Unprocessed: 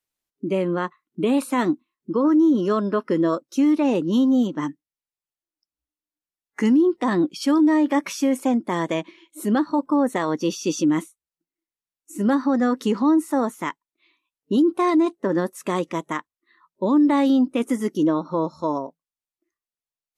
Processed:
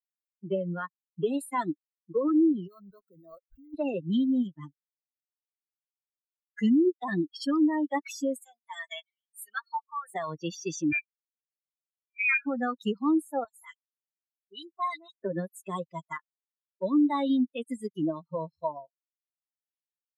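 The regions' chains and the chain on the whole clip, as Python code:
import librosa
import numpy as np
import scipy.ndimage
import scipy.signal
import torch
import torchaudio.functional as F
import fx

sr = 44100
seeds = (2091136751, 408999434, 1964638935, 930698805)

y = fx.chain(x, sr, fx.law_mismatch(coded='mu'),
    fx.level_steps(step_db=15),
    fx.resample_linear(factor=8), at=(2.67, 3.74))
y = fx.chain(y, sr, fx.highpass(hz=1100.0, slope=12),
    fx.comb(ms=4.4, depth=0.53), at=(8.4, 10.09))
y = fx.chain(y, sr, fx.highpass(hz=220.0, slope=12),
    fx.freq_invert(carrier_hz=2700), at=(10.92, 12.46))
y = fx.chain(y, sr, fx.highpass(hz=1300.0, slope=6),
    fx.dispersion(late='highs', ms=47.0, hz=2700.0), at=(13.44, 15.17))
y = fx.bin_expand(y, sr, power=3.0)
y = fx.band_squash(y, sr, depth_pct=40)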